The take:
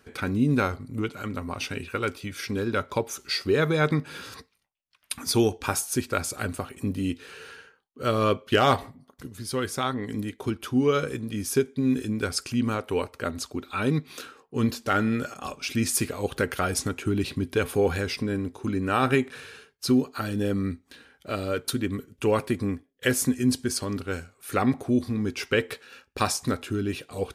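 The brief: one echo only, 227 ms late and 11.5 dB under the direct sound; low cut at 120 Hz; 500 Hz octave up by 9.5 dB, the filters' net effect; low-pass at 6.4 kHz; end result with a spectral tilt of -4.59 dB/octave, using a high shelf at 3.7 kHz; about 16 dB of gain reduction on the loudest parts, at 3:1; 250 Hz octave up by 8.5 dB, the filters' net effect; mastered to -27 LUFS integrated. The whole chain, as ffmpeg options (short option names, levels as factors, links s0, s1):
-af "highpass=120,lowpass=6400,equalizer=f=250:t=o:g=7.5,equalizer=f=500:t=o:g=9,highshelf=f=3700:g=8,acompressor=threshold=0.0282:ratio=3,aecho=1:1:227:0.266,volume=1.78"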